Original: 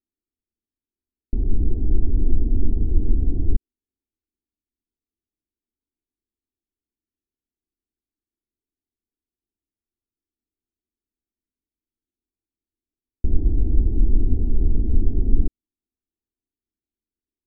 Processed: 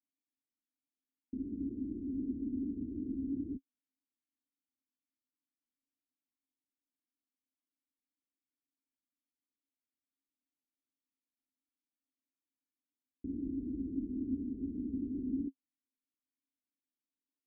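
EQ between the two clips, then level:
formant filter i
high-pass filter 41 Hz
+1.0 dB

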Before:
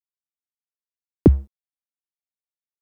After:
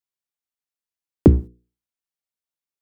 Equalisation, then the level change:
mains-hum notches 60/120/180/240/300/360/420/480 Hz
+2.0 dB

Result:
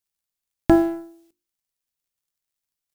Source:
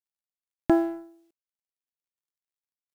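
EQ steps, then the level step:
low-shelf EQ 150 Hz +11 dB
high-shelf EQ 3,000 Hz +7 dB
mains-hum notches 50/100/150/200/250/300/350 Hz
+4.0 dB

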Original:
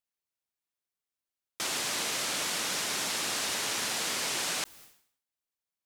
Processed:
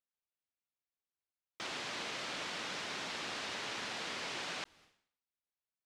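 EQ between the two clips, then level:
low-pass filter 3,900 Hz 12 dB per octave
−6.0 dB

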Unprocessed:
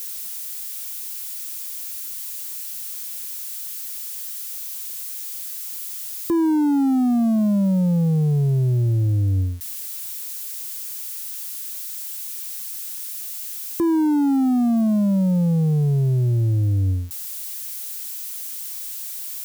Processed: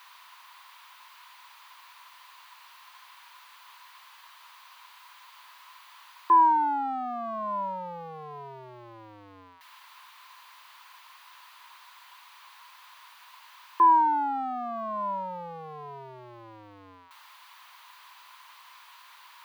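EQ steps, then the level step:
high-pass with resonance 1,000 Hz, resonance Q 9.7
high-frequency loss of the air 360 metres
notch filter 5,300 Hz, Q 16
0.0 dB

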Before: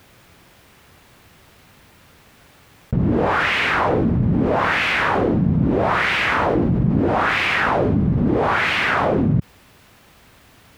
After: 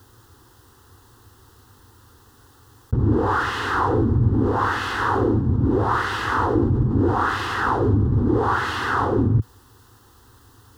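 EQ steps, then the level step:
parametric band 110 Hz +11 dB 0.98 octaves
phaser with its sweep stopped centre 620 Hz, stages 6
0.0 dB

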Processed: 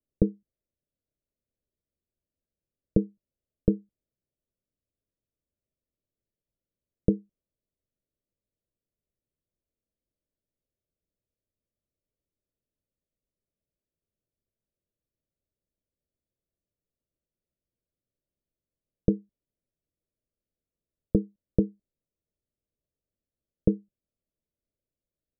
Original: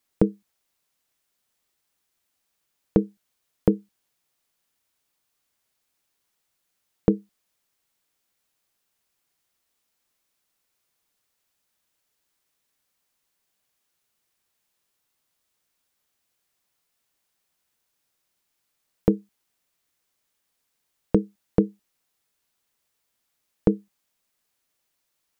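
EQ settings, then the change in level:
Butterworth low-pass 650 Hz 96 dB per octave
low-shelf EQ 140 Hz +11 dB
−6.5 dB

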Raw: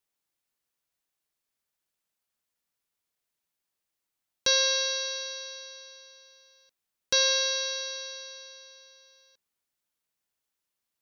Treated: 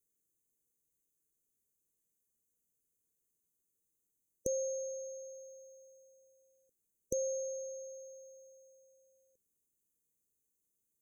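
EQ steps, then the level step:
linear-phase brick-wall band-stop 530–6,000 Hz
+3.0 dB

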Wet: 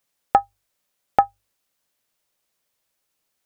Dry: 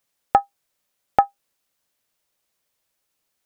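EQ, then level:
mains-hum notches 50/100 Hz
0.0 dB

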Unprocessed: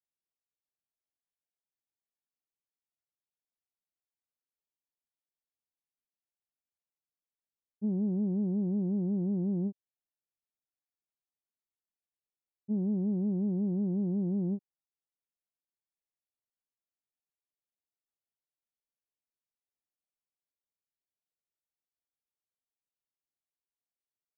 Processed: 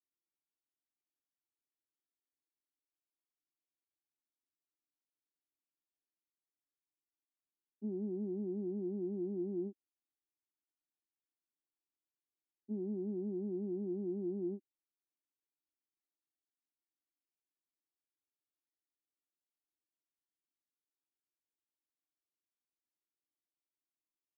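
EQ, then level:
four-pole ladder band-pass 350 Hz, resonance 55%
phaser with its sweep stopped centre 520 Hz, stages 6
+9.0 dB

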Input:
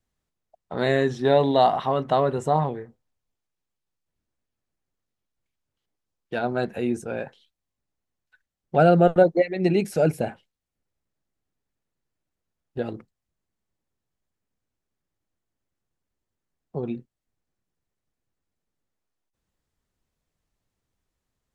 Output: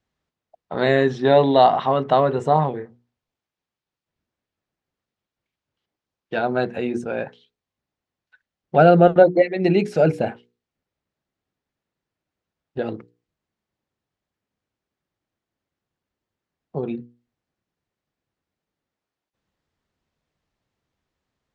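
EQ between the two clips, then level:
high-pass filter 99 Hz 6 dB per octave
low-pass filter 4,700 Hz 12 dB per octave
mains-hum notches 60/120/180/240/300/360/420/480 Hz
+4.5 dB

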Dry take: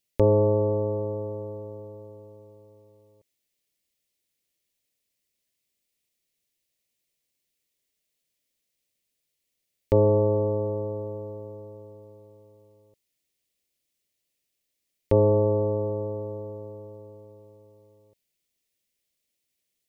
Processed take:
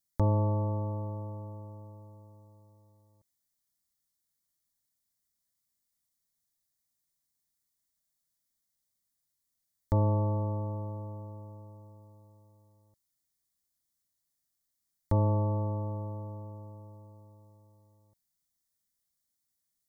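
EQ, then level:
phaser with its sweep stopped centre 1,100 Hz, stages 4
−1.0 dB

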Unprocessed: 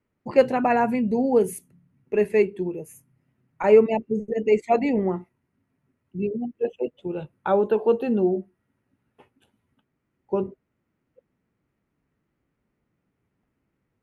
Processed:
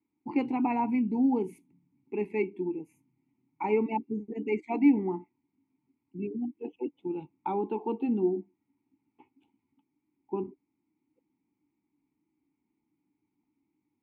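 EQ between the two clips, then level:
formant filter u
low-shelf EQ 130 Hz +8 dB
high-shelf EQ 5,600 Hz +6 dB
+5.5 dB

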